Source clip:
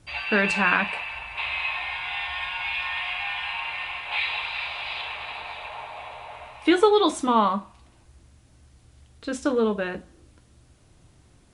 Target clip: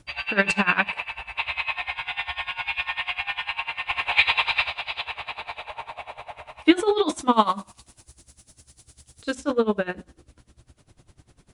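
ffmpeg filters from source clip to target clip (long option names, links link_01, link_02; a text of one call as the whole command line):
ffmpeg -i in.wav -filter_complex "[0:a]asplit=3[link_01][link_02][link_03];[link_01]afade=type=out:start_time=3.89:duration=0.02[link_04];[link_02]acontrast=76,afade=type=in:start_time=3.89:duration=0.02,afade=type=out:start_time=4.68:duration=0.02[link_05];[link_03]afade=type=in:start_time=4.68:duration=0.02[link_06];[link_04][link_05][link_06]amix=inputs=3:normalize=0,asettb=1/sr,asplit=3[link_07][link_08][link_09];[link_07]atrim=end=7.334[link_10];[link_08]atrim=start=7.33:end=9.35,asetpts=PTS-STARTPTS,afade=type=in:duration=0.004:curve=qsin,afade=type=out:start_time=2.016:duration=0.004:curve=qsin,bass=frequency=250:gain=-2,treble=frequency=4000:gain=15[link_11];[link_09]atrim=start=9.346[link_12];[link_10][link_11]acrossfade=duration=0.004:curve1=hsin:curve2=qsin[link_13];[link_13][link_12]acrossfade=duration=0.004:curve1=qsin:curve2=hsin,aeval=exprs='val(0)*pow(10,-20*(0.5-0.5*cos(2*PI*10*n/s))/20)':channel_layout=same,volume=5.5dB" out.wav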